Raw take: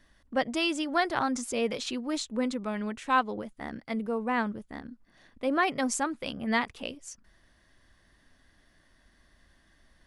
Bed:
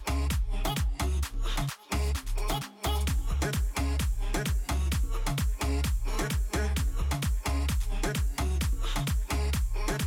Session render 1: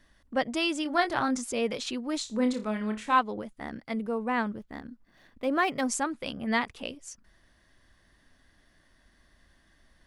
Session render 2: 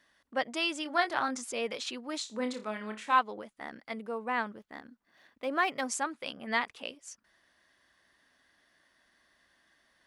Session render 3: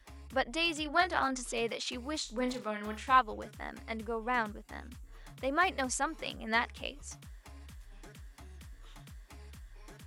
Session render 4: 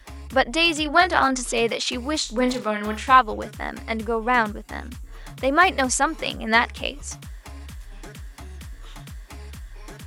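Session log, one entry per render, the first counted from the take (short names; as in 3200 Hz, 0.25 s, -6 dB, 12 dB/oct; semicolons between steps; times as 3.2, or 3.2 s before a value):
0.83–1.38 doubler 23 ms -8 dB; 2.22–3.19 flutter echo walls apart 4.8 m, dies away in 0.24 s; 4.48–5.87 median filter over 5 samples
HPF 690 Hz 6 dB/oct; high shelf 5200 Hz -4.5 dB
add bed -22 dB
gain +12 dB; limiter -3 dBFS, peak gain reduction 2.5 dB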